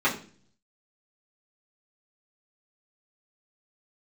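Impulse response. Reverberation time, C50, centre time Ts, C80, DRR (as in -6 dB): 0.45 s, 11.0 dB, 19 ms, 15.0 dB, -9.0 dB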